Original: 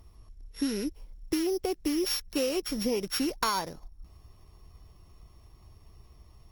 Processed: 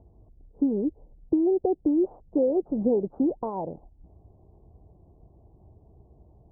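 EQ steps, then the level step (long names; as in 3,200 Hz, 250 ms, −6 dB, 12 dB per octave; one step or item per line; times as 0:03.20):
high-pass filter 160 Hz 6 dB per octave
Butterworth low-pass 820 Hz 48 dB per octave
high-frequency loss of the air 400 metres
+8.0 dB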